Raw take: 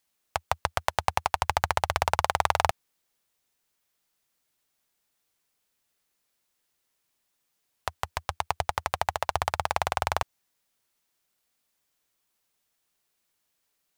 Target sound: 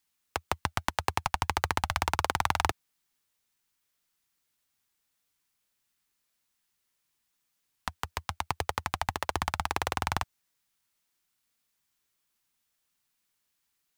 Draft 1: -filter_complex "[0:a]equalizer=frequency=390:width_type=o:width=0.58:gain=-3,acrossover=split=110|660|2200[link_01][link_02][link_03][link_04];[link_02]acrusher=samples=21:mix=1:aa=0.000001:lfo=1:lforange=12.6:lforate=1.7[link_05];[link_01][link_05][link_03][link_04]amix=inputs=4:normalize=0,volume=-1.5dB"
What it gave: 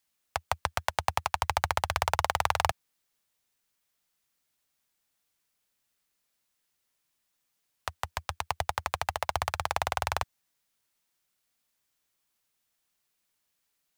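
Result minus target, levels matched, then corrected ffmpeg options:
sample-and-hold swept by an LFO: distortion −19 dB
-filter_complex "[0:a]equalizer=frequency=390:width_type=o:width=0.58:gain=-3,acrossover=split=110|660|2200[link_01][link_02][link_03][link_04];[link_02]acrusher=samples=49:mix=1:aa=0.000001:lfo=1:lforange=29.4:lforate=1.7[link_05];[link_01][link_05][link_03][link_04]amix=inputs=4:normalize=0,volume=-1.5dB"

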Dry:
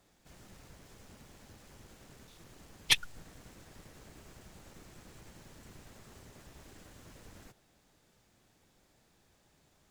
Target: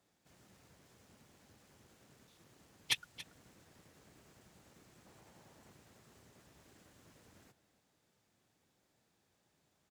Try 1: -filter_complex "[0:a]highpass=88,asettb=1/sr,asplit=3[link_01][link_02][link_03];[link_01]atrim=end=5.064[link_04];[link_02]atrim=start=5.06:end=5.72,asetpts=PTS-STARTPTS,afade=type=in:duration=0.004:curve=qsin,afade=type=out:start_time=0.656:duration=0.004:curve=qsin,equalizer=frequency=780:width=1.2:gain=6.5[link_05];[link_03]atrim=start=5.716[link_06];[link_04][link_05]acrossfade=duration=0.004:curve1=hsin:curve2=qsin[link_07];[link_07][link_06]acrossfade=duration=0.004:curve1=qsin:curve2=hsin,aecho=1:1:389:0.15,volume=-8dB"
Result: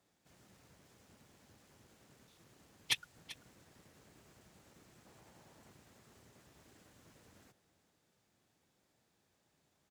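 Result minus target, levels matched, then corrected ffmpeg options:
echo 108 ms late
-filter_complex "[0:a]highpass=88,asettb=1/sr,asplit=3[link_01][link_02][link_03];[link_01]atrim=end=5.064[link_04];[link_02]atrim=start=5.06:end=5.72,asetpts=PTS-STARTPTS,afade=type=in:duration=0.004:curve=qsin,afade=type=out:start_time=0.656:duration=0.004:curve=qsin,equalizer=frequency=780:width=1.2:gain=6.5[link_05];[link_03]atrim=start=5.716[link_06];[link_04][link_05]acrossfade=duration=0.004:curve1=hsin:curve2=qsin[link_07];[link_07][link_06]acrossfade=duration=0.004:curve1=qsin:curve2=hsin,aecho=1:1:281:0.15,volume=-8dB"

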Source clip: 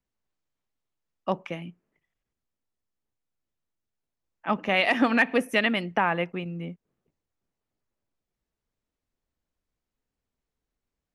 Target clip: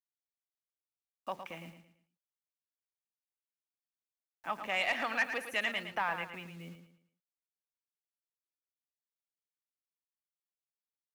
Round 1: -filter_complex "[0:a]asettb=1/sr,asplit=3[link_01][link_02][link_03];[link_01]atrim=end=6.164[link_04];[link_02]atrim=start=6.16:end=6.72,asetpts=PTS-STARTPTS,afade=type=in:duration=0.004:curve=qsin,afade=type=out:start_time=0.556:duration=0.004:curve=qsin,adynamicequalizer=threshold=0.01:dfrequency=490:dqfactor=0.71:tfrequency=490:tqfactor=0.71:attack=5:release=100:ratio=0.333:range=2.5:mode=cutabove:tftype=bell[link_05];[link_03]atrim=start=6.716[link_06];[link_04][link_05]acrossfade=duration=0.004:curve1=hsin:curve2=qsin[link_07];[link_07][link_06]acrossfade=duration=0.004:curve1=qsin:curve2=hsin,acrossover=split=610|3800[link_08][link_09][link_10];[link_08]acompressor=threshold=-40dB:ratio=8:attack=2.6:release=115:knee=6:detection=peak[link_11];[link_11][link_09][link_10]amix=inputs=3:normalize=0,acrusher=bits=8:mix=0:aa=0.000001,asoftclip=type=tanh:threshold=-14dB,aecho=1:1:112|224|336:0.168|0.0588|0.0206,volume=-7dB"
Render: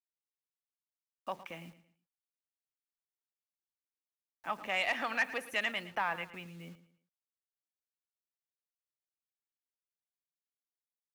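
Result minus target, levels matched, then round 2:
echo-to-direct −6.5 dB
-filter_complex "[0:a]asettb=1/sr,asplit=3[link_01][link_02][link_03];[link_01]atrim=end=6.164[link_04];[link_02]atrim=start=6.16:end=6.72,asetpts=PTS-STARTPTS,afade=type=in:duration=0.004:curve=qsin,afade=type=out:start_time=0.556:duration=0.004:curve=qsin,adynamicequalizer=threshold=0.01:dfrequency=490:dqfactor=0.71:tfrequency=490:tqfactor=0.71:attack=5:release=100:ratio=0.333:range=2.5:mode=cutabove:tftype=bell[link_05];[link_03]atrim=start=6.716[link_06];[link_04][link_05]acrossfade=duration=0.004:curve1=hsin:curve2=qsin[link_07];[link_07][link_06]acrossfade=duration=0.004:curve1=qsin:curve2=hsin,acrossover=split=610|3800[link_08][link_09][link_10];[link_08]acompressor=threshold=-40dB:ratio=8:attack=2.6:release=115:knee=6:detection=peak[link_11];[link_11][link_09][link_10]amix=inputs=3:normalize=0,acrusher=bits=8:mix=0:aa=0.000001,asoftclip=type=tanh:threshold=-14dB,aecho=1:1:112|224|336|448:0.355|0.124|0.0435|0.0152,volume=-7dB"

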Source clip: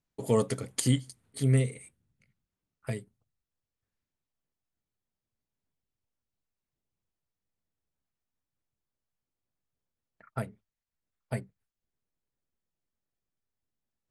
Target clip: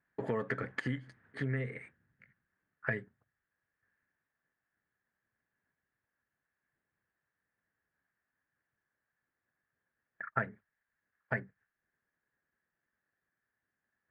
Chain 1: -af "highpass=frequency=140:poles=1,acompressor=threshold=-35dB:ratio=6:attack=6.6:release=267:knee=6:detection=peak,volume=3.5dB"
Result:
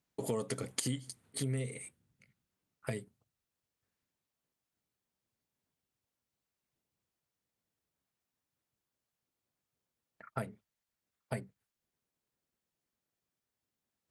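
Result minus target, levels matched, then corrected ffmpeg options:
2,000 Hz band −10.5 dB
-af "highpass=frequency=140:poles=1,acompressor=threshold=-35dB:ratio=6:attack=6.6:release=267:knee=6:detection=peak,lowpass=frequency=1700:width_type=q:width=8.5,volume=3.5dB"

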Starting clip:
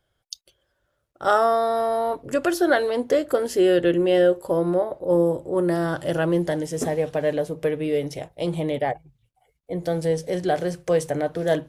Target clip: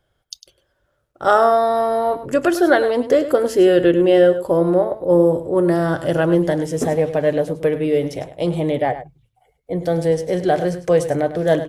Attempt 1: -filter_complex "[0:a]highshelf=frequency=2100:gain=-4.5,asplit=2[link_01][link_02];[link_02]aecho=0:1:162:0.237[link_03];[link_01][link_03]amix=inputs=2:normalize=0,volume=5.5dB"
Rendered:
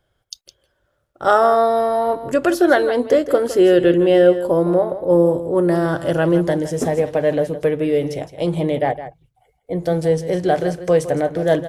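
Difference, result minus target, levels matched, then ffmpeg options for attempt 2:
echo 60 ms late
-filter_complex "[0:a]highshelf=frequency=2100:gain=-4.5,asplit=2[link_01][link_02];[link_02]aecho=0:1:102:0.237[link_03];[link_01][link_03]amix=inputs=2:normalize=0,volume=5.5dB"

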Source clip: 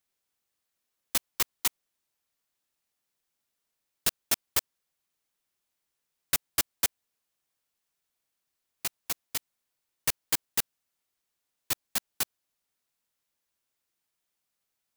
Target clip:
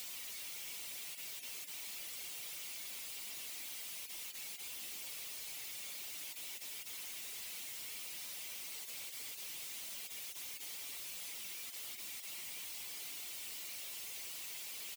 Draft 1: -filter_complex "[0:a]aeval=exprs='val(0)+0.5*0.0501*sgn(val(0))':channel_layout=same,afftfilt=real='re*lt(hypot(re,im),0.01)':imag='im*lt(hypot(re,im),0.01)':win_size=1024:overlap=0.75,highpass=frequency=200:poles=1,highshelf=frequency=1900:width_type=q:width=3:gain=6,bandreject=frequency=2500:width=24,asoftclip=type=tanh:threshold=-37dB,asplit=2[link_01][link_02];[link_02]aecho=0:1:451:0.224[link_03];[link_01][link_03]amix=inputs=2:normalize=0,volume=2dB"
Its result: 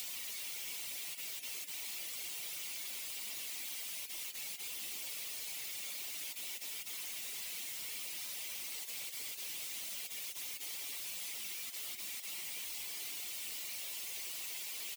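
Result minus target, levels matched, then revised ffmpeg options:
soft clipping: distortion −8 dB
-filter_complex "[0:a]aeval=exprs='val(0)+0.5*0.0501*sgn(val(0))':channel_layout=same,afftfilt=real='re*lt(hypot(re,im),0.01)':imag='im*lt(hypot(re,im),0.01)':win_size=1024:overlap=0.75,highpass=frequency=200:poles=1,highshelf=frequency=1900:width_type=q:width=3:gain=6,bandreject=frequency=2500:width=24,asoftclip=type=tanh:threshold=-44.5dB,asplit=2[link_01][link_02];[link_02]aecho=0:1:451:0.224[link_03];[link_01][link_03]amix=inputs=2:normalize=0,volume=2dB"

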